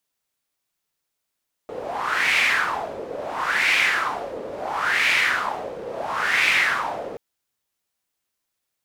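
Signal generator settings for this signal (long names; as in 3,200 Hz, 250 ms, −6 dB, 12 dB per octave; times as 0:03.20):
wind from filtered noise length 5.48 s, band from 480 Hz, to 2,300 Hz, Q 4.2, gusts 4, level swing 14 dB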